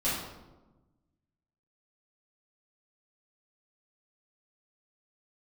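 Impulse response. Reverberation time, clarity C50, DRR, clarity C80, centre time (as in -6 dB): 1.1 s, 0.5 dB, -11.0 dB, 4.5 dB, 66 ms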